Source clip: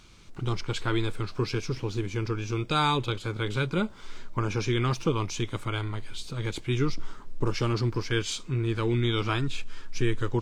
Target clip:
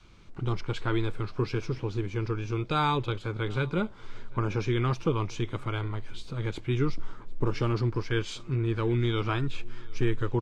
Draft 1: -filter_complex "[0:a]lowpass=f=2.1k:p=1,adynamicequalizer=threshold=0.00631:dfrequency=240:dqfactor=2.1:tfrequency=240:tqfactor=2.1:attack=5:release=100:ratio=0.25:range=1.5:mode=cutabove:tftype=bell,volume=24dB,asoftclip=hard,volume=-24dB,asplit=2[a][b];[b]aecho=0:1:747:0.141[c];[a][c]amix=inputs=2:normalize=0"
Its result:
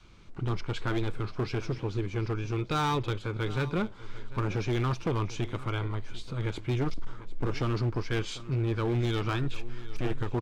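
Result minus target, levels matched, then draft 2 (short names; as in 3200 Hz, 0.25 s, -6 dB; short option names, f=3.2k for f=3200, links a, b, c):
overloaded stage: distortion +30 dB; echo-to-direct +7.5 dB
-filter_complex "[0:a]lowpass=f=2.1k:p=1,adynamicequalizer=threshold=0.00631:dfrequency=240:dqfactor=2.1:tfrequency=240:tqfactor=2.1:attack=5:release=100:ratio=0.25:range=1.5:mode=cutabove:tftype=bell,volume=14.5dB,asoftclip=hard,volume=-14.5dB,asplit=2[a][b];[b]aecho=0:1:747:0.0596[c];[a][c]amix=inputs=2:normalize=0"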